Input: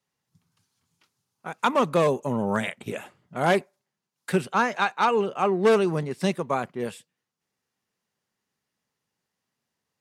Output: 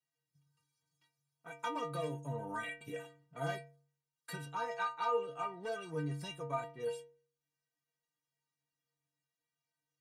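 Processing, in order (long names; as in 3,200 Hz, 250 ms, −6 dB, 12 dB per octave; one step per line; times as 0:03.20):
downward compressor, threshold −22 dBFS, peak gain reduction 8 dB
stiff-string resonator 140 Hz, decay 0.63 s, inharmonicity 0.03
level +4 dB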